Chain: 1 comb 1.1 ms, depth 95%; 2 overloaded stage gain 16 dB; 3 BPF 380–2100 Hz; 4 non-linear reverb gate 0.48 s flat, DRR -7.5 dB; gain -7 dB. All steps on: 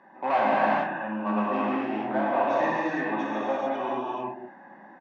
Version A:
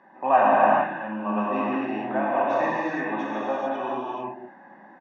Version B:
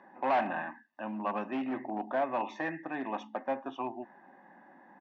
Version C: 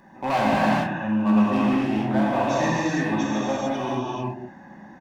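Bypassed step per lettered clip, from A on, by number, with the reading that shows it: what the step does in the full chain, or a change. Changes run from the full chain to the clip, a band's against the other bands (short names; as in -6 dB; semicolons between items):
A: 2, distortion -9 dB; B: 4, momentary loudness spread change +2 LU; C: 3, 125 Hz band +12.0 dB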